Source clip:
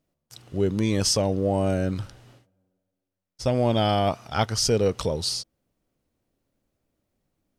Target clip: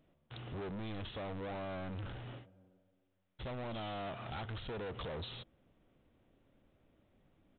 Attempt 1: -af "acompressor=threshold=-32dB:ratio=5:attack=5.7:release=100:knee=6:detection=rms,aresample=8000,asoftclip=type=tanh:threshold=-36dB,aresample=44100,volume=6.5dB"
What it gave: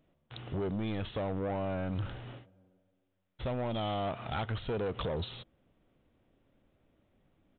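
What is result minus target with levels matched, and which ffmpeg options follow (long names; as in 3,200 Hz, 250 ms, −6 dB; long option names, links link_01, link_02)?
soft clipping: distortion −6 dB
-af "acompressor=threshold=-32dB:ratio=5:attack=5.7:release=100:knee=6:detection=rms,aresample=8000,asoftclip=type=tanh:threshold=-46.5dB,aresample=44100,volume=6.5dB"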